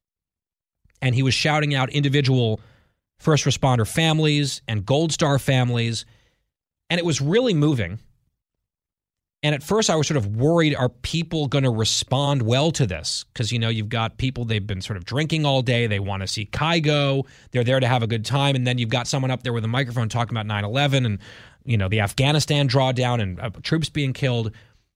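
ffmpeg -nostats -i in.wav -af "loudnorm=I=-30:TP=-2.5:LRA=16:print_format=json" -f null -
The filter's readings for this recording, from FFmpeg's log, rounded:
"input_i" : "-21.6",
"input_tp" : "-5.2",
"input_lra" : "2.5",
"input_thresh" : "-31.9",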